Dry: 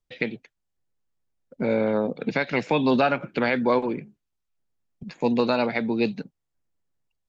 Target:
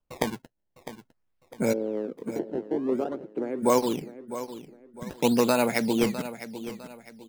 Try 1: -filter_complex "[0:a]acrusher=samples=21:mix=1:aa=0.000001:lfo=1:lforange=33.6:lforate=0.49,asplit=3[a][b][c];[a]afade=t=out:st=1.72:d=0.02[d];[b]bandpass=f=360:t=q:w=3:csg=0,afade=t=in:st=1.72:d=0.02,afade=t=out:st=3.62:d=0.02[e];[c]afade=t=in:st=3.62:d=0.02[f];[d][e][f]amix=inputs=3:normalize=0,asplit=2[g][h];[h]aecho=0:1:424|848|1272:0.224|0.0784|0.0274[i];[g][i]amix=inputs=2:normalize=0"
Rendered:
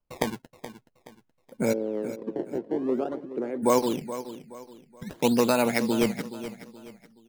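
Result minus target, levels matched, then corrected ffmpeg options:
echo 0.231 s early
-filter_complex "[0:a]acrusher=samples=21:mix=1:aa=0.000001:lfo=1:lforange=33.6:lforate=0.49,asplit=3[a][b][c];[a]afade=t=out:st=1.72:d=0.02[d];[b]bandpass=f=360:t=q:w=3:csg=0,afade=t=in:st=1.72:d=0.02,afade=t=out:st=3.62:d=0.02[e];[c]afade=t=in:st=3.62:d=0.02[f];[d][e][f]amix=inputs=3:normalize=0,asplit=2[g][h];[h]aecho=0:1:655|1310|1965:0.224|0.0784|0.0274[i];[g][i]amix=inputs=2:normalize=0"

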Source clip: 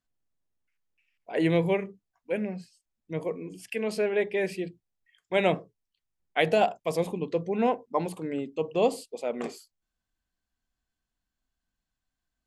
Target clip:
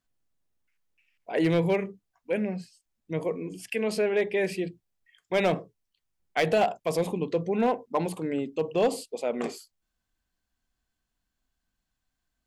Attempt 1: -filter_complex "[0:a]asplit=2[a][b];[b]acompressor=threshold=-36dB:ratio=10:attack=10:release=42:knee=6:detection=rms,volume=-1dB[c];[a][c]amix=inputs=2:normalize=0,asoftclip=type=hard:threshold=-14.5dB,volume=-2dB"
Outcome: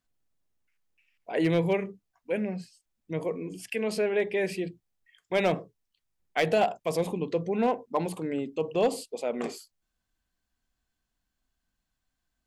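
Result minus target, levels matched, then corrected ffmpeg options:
compressor: peak gain reduction +6 dB
-filter_complex "[0:a]asplit=2[a][b];[b]acompressor=threshold=-29.5dB:ratio=10:attack=10:release=42:knee=6:detection=rms,volume=-1dB[c];[a][c]amix=inputs=2:normalize=0,asoftclip=type=hard:threshold=-14.5dB,volume=-2dB"

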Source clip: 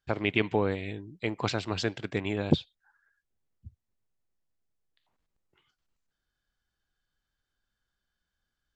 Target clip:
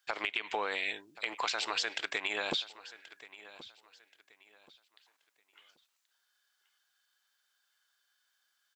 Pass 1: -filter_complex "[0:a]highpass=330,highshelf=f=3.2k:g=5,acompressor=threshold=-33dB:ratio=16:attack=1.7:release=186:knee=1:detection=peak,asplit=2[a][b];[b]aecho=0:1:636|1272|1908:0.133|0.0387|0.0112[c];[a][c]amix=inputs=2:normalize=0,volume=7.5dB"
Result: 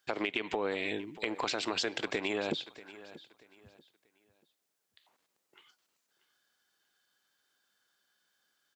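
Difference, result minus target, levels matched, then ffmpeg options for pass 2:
250 Hz band +11.0 dB; echo 0.443 s early
-filter_complex "[0:a]highpass=960,highshelf=f=3.2k:g=5,acompressor=threshold=-33dB:ratio=16:attack=1.7:release=186:knee=1:detection=peak,asplit=2[a][b];[b]aecho=0:1:1079|2158|3237:0.133|0.0387|0.0112[c];[a][c]amix=inputs=2:normalize=0,volume=7.5dB"

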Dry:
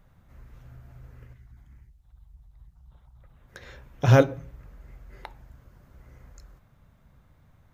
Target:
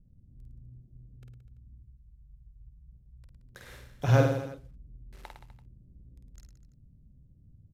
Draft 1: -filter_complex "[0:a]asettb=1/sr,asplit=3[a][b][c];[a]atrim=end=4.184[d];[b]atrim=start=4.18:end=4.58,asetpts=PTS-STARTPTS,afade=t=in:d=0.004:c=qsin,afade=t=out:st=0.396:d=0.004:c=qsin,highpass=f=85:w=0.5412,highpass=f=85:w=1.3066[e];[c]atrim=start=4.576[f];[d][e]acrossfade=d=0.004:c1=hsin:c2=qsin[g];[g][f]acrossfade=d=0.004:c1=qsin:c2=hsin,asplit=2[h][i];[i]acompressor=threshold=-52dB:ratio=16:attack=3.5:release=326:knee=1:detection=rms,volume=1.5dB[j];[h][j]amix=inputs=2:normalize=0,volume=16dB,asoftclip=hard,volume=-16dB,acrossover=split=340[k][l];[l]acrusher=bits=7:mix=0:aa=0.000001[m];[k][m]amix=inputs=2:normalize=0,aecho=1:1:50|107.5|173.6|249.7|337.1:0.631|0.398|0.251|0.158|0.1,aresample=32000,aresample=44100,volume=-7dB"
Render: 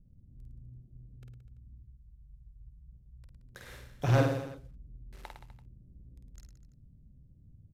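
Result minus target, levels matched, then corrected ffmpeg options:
overloaded stage: distortion +10 dB
-filter_complex "[0:a]asettb=1/sr,asplit=3[a][b][c];[a]atrim=end=4.184[d];[b]atrim=start=4.18:end=4.58,asetpts=PTS-STARTPTS,afade=t=in:d=0.004:c=qsin,afade=t=out:st=0.396:d=0.004:c=qsin,highpass=f=85:w=0.5412,highpass=f=85:w=1.3066[e];[c]atrim=start=4.576[f];[d][e]acrossfade=d=0.004:c1=hsin:c2=qsin[g];[g][f]acrossfade=d=0.004:c1=qsin:c2=hsin,asplit=2[h][i];[i]acompressor=threshold=-52dB:ratio=16:attack=3.5:release=326:knee=1:detection=rms,volume=1.5dB[j];[h][j]amix=inputs=2:normalize=0,volume=10dB,asoftclip=hard,volume=-10dB,acrossover=split=340[k][l];[l]acrusher=bits=7:mix=0:aa=0.000001[m];[k][m]amix=inputs=2:normalize=0,aecho=1:1:50|107.5|173.6|249.7|337.1:0.631|0.398|0.251|0.158|0.1,aresample=32000,aresample=44100,volume=-7dB"

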